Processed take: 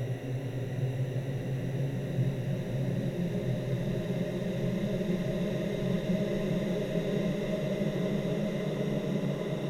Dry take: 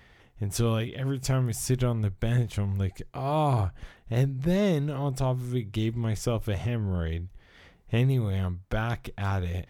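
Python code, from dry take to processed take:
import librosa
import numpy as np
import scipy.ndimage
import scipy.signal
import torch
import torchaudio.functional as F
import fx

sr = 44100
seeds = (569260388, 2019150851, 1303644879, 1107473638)

y = fx.paulstretch(x, sr, seeds[0], factor=14.0, window_s=1.0, from_s=4.12)
y = F.gain(torch.from_numpy(y), -6.0).numpy()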